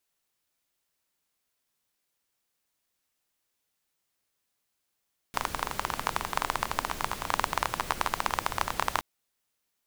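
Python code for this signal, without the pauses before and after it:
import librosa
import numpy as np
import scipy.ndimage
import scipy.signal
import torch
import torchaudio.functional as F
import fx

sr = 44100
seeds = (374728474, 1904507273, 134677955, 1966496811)

y = fx.rain(sr, seeds[0], length_s=3.67, drops_per_s=19.0, hz=1000.0, bed_db=-7.0)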